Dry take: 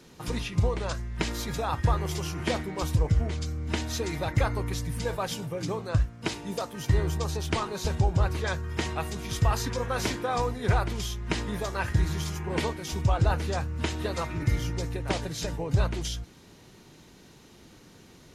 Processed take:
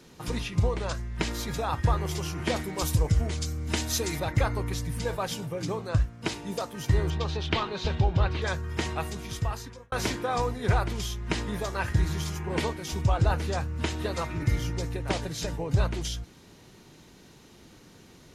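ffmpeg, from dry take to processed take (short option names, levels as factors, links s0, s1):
-filter_complex "[0:a]asettb=1/sr,asplit=3[s0][s1][s2];[s0]atrim=end=2.564[s3];[s1]atrim=start=2.56:end=4.2,asetpts=PTS-STARTPTS,afade=t=in:d=0.004:c=qsin,afade=t=out:st=1.636:d=0.004:c=qsin,highshelf=f=5500:g=12[s4];[s2]atrim=start=4.196[s5];[s3][s4]acrossfade=d=0.004:c1=hsin:c2=qsin[s6];[s6][s5]acrossfade=d=0.004:c1=qsin:c2=hsin,asettb=1/sr,asplit=3[s7][s8][s9];[s7]atrim=end=7.104[s10];[s8]atrim=start=7.1:end=8.42,asetpts=PTS-STARTPTS,afade=t=in:d=0.004:c=qsin,afade=t=out:st=1.316:d=0.004:c=qsin,lowpass=f=3500:t=q:w=1.9[s11];[s9]atrim=start=8.416[s12];[s10][s11]acrossfade=d=0.004:c1=hsin:c2=qsin[s13];[s13][s12]acrossfade=d=0.004:c1=qsin:c2=hsin,asplit=2[s14][s15];[s14]atrim=end=9.92,asetpts=PTS-STARTPTS,afade=t=out:st=9.02:d=0.9[s16];[s15]atrim=start=9.92,asetpts=PTS-STARTPTS,afade=t=in:d=0.004:c=hsin[s17];[s16][s17]concat=n=2:v=0:a=1"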